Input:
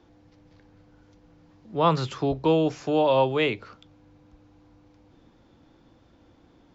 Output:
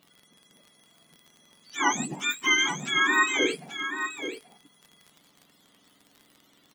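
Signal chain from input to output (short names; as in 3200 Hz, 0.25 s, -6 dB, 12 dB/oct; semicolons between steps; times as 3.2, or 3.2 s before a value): spectrum mirrored in octaves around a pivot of 1000 Hz; crackle 35/s -38 dBFS; echo 0.832 s -9 dB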